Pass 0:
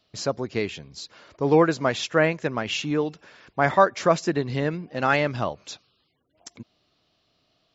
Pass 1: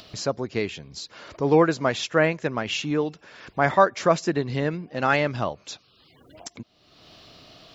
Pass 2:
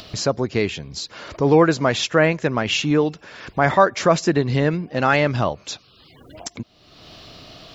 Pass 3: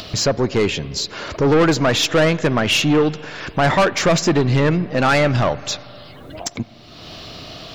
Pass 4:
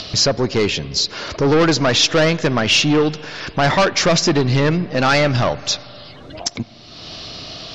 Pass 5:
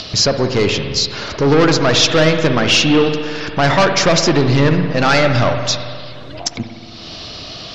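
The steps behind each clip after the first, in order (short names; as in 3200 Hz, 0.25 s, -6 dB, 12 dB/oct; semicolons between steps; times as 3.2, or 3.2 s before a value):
upward compressor, threshold -32 dBFS
low shelf 98 Hz +5.5 dB; in parallel at +1 dB: limiter -15.5 dBFS, peak gain reduction 12 dB
soft clip -17.5 dBFS, distortion -7 dB; on a send at -17 dB: reverb RT60 3.0 s, pre-delay 39 ms; on the sum: gain +7 dB
synth low-pass 5400 Hz, resonance Q 2.2
spring tank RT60 2 s, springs 57 ms, chirp 45 ms, DRR 6 dB; gain +1.5 dB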